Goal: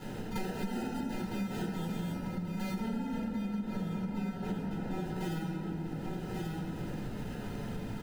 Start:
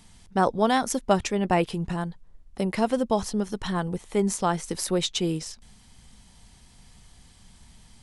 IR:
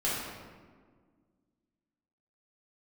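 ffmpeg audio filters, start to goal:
-filter_complex "[0:a]equalizer=f=125:t=o:w=1:g=8,equalizer=f=250:t=o:w=1:g=5,equalizer=f=500:t=o:w=1:g=-12,equalizer=f=1k:t=o:w=1:g=-4,equalizer=f=2k:t=o:w=1:g=4,equalizer=f=4k:t=o:w=1:g=-11,equalizer=f=8k:t=o:w=1:g=10,asplit=2[a][b];[b]highpass=f=720:p=1,volume=25dB,asoftclip=type=tanh:threshold=-18.5dB[c];[a][c]amix=inputs=2:normalize=0,lowpass=f=1.4k:p=1,volume=-6dB,acrusher=samples=39:mix=1:aa=0.000001,asettb=1/sr,asplit=3[d][e][f];[d]atrim=end=2.784[g];[e]atrim=start=2.78:end=5.03,asetpts=PTS-STARTPTS,afade=t=in:d=0.004:c=qsin,afade=t=out:st=2.246:d=0.004:c=qsin,highshelf=f=3k:g=-8.5[h];[f]atrim=start=5.026[i];[g][h]acrossfade=d=0.004:c1=hsin:c2=qsin[j];[j][i]acrossfade=d=0.004:c1=qsin:c2=hsin,aecho=1:1:1134:0.211[k];[1:a]atrim=start_sample=2205[l];[k][l]afir=irnorm=-1:irlink=0,acompressor=threshold=-31dB:ratio=8,bandreject=f=630:w=14,volume=-2.5dB"

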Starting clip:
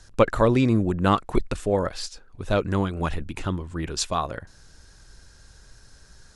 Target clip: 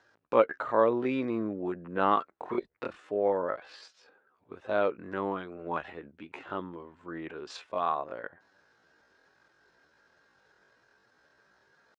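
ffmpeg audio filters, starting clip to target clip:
-af "atempo=0.53,highpass=370,lowpass=2.1k,volume=-3.5dB"

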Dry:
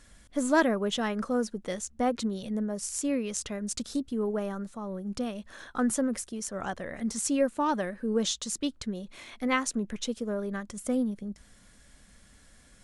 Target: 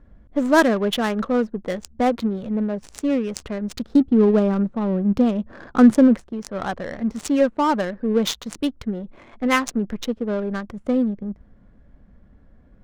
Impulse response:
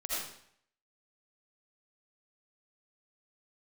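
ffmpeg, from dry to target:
-filter_complex "[0:a]asettb=1/sr,asplit=3[a][b][c];[a]atrim=end=3.954[d];[b]atrim=start=3.95:end=6.15,asetpts=PTS-STARTPTS,afade=t=in:d=0.004:c=qsin,afade=t=out:st=2.196:d=0.004:c=qsin,equalizer=f=210:w=0.46:g=8[e];[c]atrim=start=6.146[f];[d][e]acrossfade=d=0.004:c1=hsin:c2=qsin[g];[g][f]acrossfade=d=0.004:c1=qsin:c2=hsin,adynamicsmooth=sensitivity=6:basefreq=690,volume=8dB"

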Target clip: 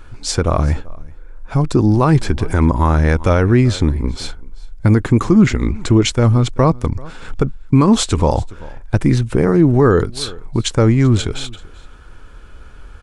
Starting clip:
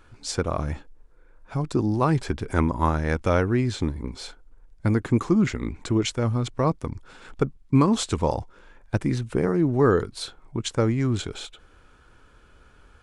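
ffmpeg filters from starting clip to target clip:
-af "lowshelf=f=66:g=11,aecho=1:1:385:0.0668,alimiter=level_in=10.5dB:limit=-1dB:release=50:level=0:latency=1,volume=-1dB"

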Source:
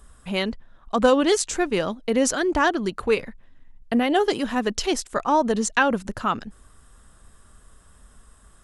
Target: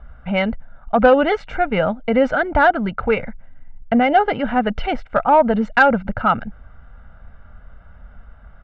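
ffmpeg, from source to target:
-filter_complex "[0:a]lowpass=f=2.3k:w=0.5412,lowpass=f=2.3k:w=1.3066,aecho=1:1:1.4:0.74,asplit=2[a][b];[b]acontrast=86,volume=1.5dB[c];[a][c]amix=inputs=2:normalize=0,volume=-5.5dB"

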